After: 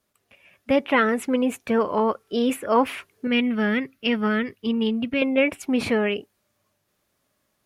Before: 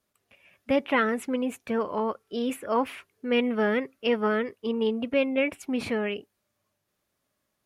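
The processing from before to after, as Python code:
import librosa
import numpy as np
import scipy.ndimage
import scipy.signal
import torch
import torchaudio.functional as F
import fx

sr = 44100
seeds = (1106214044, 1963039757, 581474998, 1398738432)

p1 = fx.graphic_eq(x, sr, hz=(125, 500, 1000, 8000), db=(3, -10, -7, -6), at=(3.27, 5.22))
p2 = fx.rider(p1, sr, range_db=10, speed_s=0.5)
y = p1 + F.gain(torch.from_numpy(p2), 0.0).numpy()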